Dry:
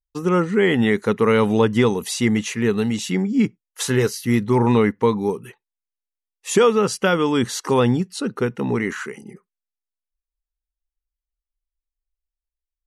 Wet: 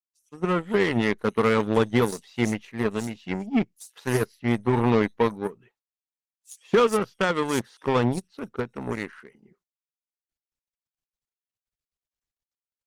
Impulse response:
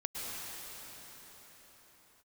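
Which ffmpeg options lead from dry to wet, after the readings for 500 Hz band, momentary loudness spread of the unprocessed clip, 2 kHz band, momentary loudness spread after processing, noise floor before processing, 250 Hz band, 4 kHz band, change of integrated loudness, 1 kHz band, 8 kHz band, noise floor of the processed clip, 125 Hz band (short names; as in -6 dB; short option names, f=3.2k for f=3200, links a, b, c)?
-5.5 dB, 7 LU, -4.0 dB, 11 LU, under -85 dBFS, -6.5 dB, -7.0 dB, -5.5 dB, -3.5 dB, -10.5 dB, under -85 dBFS, -6.0 dB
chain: -filter_complex "[0:a]acrossover=split=4800[a][b];[a]adelay=170[c];[c][b]amix=inputs=2:normalize=0,aeval=exprs='0.596*(cos(1*acos(clip(val(0)/0.596,-1,1)))-cos(1*PI/2))+0.0668*(cos(7*acos(clip(val(0)/0.596,-1,1)))-cos(7*PI/2))':c=same,volume=-4dB" -ar 48000 -c:a libopus -b:a 24k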